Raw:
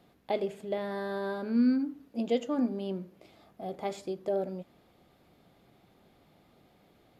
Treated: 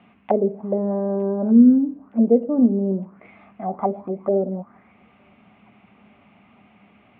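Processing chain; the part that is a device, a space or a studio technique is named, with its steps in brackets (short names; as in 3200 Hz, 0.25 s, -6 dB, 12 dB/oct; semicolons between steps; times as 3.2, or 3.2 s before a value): high shelf 5200 Hz +12 dB; envelope filter bass rig (envelope low-pass 470–2900 Hz down, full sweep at -29.5 dBFS; speaker cabinet 78–2300 Hz, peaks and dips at 150 Hz -7 dB, 210 Hz +10 dB, 340 Hz -8 dB, 500 Hz -9 dB, 1100 Hz +4 dB, 1700 Hz -5 dB); thin delay 0.914 s, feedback 64%, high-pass 2100 Hz, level -18 dB; gain +8 dB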